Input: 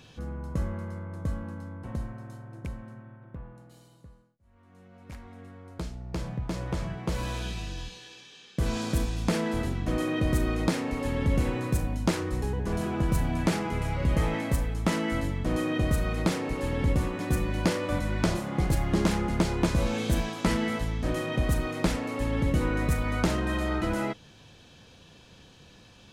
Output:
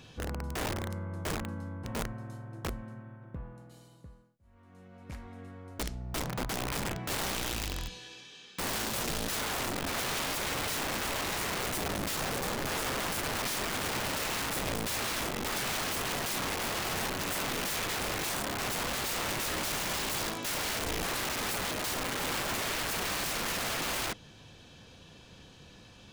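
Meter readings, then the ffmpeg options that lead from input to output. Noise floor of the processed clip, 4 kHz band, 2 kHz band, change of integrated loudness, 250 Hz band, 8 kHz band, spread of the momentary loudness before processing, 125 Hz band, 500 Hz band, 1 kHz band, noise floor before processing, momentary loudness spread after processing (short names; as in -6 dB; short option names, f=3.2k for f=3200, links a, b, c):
-54 dBFS, +6.0 dB, +1.5 dB, -3.0 dB, -10.5 dB, +7.5 dB, 14 LU, -11.5 dB, -5.5 dB, 0.0 dB, -54 dBFS, 10 LU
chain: -af "aeval=exprs='(mod(26.6*val(0)+1,2)-1)/26.6':c=same"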